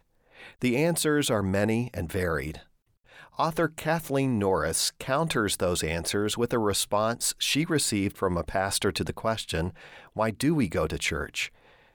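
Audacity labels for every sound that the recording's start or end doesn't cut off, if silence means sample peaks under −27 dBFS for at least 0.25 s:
0.630000	2.500000	sound
3.390000	9.680000	sound
10.180000	11.450000	sound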